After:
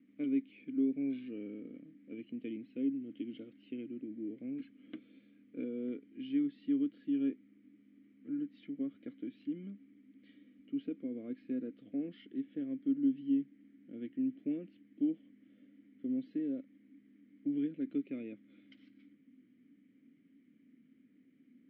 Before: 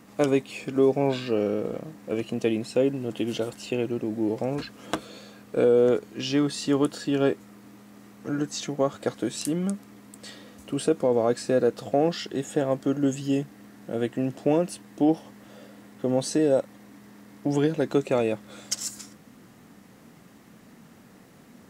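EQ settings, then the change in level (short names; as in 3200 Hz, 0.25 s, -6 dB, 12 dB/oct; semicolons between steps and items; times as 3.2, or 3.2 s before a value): vowel filter i; inverse Chebyshev low-pass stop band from 9000 Hz, stop band 40 dB; air absorption 450 m; -3.5 dB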